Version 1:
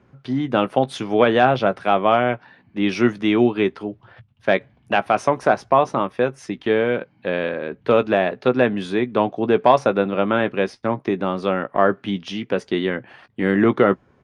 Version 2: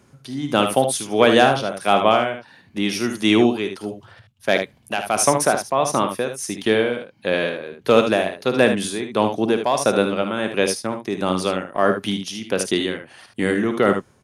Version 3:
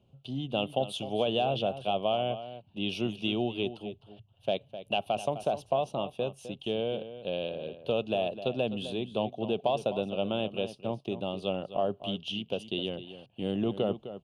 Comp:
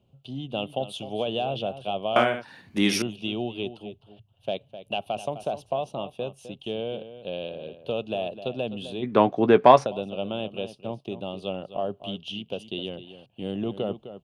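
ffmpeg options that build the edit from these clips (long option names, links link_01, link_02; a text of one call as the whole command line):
ffmpeg -i take0.wav -i take1.wav -i take2.wav -filter_complex "[2:a]asplit=3[link_01][link_02][link_03];[link_01]atrim=end=2.162[link_04];[1:a]atrim=start=2.158:end=3.022[link_05];[link_02]atrim=start=3.018:end=9.06[link_06];[0:a]atrim=start=9.02:end=9.87[link_07];[link_03]atrim=start=9.83[link_08];[link_04][link_05]acrossfade=duration=0.004:curve1=hsin:curve2=hsin[link_09];[link_09][link_06]acrossfade=duration=0.004:curve1=hsin:curve2=hsin[link_10];[link_10][link_07]acrossfade=duration=0.04:curve1=tri:curve2=tri[link_11];[link_11][link_08]acrossfade=duration=0.04:curve1=tri:curve2=tri" out.wav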